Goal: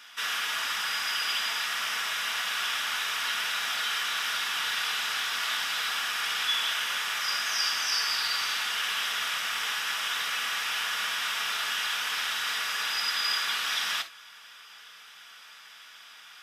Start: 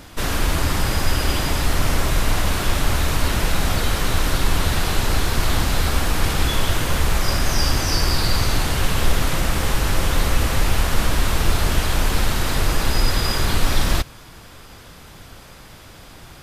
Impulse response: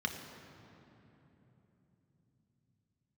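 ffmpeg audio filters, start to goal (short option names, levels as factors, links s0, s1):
-filter_complex "[0:a]highpass=1300[s0];[1:a]atrim=start_sample=2205,atrim=end_sample=3528[s1];[s0][s1]afir=irnorm=-1:irlink=0,volume=0.531"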